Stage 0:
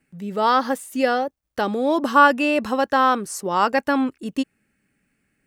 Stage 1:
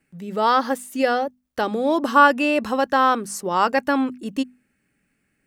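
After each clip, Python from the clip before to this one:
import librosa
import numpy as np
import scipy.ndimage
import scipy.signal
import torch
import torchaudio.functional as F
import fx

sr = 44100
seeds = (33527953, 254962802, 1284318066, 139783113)

y = fx.hum_notches(x, sr, base_hz=50, count=5)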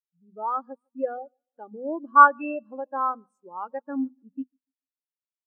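y = fx.echo_feedback(x, sr, ms=146, feedback_pct=49, wet_db=-16.5)
y = fx.spectral_expand(y, sr, expansion=2.5)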